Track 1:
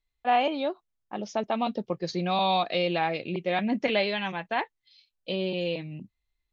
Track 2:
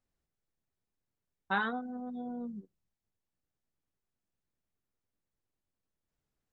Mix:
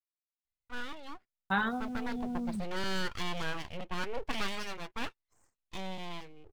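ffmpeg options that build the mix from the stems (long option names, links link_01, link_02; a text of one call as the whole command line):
ffmpeg -i stem1.wav -i stem2.wav -filter_complex "[0:a]lowpass=frequency=4100:width=0.5412,lowpass=frequency=4100:width=1.3066,dynaudnorm=framelen=420:gausssize=7:maxgain=8dB,aeval=exprs='abs(val(0))':channel_layout=same,adelay=450,volume=-14dB[link_01];[1:a]asubboost=boost=10:cutoff=140,aeval=exprs='val(0)*gte(abs(val(0)),0.00211)':channel_layout=same,volume=1.5dB[link_02];[link_01][link_02]amix=inputs=2:normalize=0" out.wav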